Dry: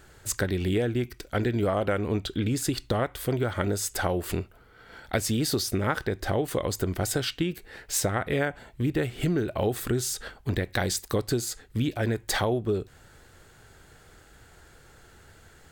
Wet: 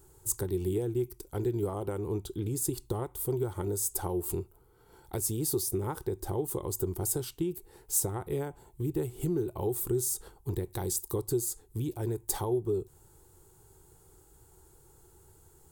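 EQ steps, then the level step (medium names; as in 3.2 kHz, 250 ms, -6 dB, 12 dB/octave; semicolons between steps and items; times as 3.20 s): FFT filter 160 Hz 0 dB, 240 Hz -10 dB, 370 Hz +6 dB, 620 Hz -12 dB, 890 Hz +2 dB, 1.7 kHz -18 dB, 4.6 kHz -8 dB, 9.9 kHz +9 dB; -5.0 dB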